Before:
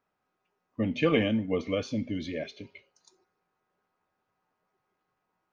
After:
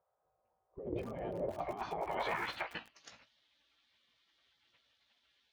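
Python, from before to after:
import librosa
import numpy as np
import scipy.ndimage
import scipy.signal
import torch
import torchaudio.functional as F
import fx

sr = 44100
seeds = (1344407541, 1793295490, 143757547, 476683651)

y = np.where(x < 0.0, 10.0 ** (-7.0 / 20.0) * x, x)
y = fx.filter_sweep_lowpass(y, sr, from_hz=280.0, to_hz=3000.0, start_s=0.99, end_s=3.29, q=2.7)
y = fx.spec_gate(y, sr, threshold_db=-20, keep='weak')
y = fx.doubler(y, sr, ms=17.0, db=-9.5)
y = fx.over_compress(y, sr, threshold_db=-55.0, ratio=-1.0)
y = fx.low_shelf(y, sr, hz=65.0, db=-10.5)
y = fx.echo_crushed(y, sr, ms=104, feedback_pct=35, bits=9, wet_db=-14)
y = y * librosa.db_to_amplitude(16.0)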